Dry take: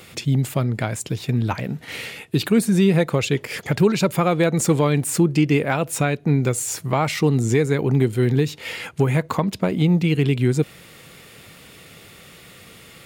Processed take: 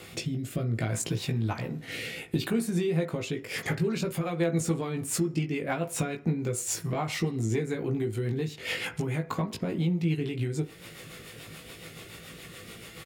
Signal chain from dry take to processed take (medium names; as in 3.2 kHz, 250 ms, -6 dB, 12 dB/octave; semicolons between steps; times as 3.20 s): compression 6:1, threshold -26 dBFS, peak gain reduction 14 dB; doubling 18 ms -4 dB; rotary cabinet horn 0.65 Hz, later 7 Hz, at 3.32 s; on a send at -10 dB: reverberation RT60 0.50 s, pre-delay 3 ms; on the sum: wow and flutter 24 cents